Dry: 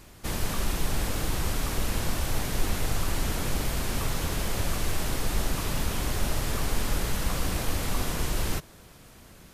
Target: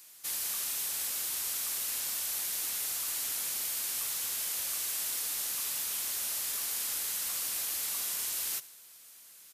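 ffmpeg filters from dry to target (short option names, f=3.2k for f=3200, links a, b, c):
-af "aderivative,aecho=1:1:73|146|219|292|365:0.1|0.057|0.0325|0.0185|0.0106,volume=3dB"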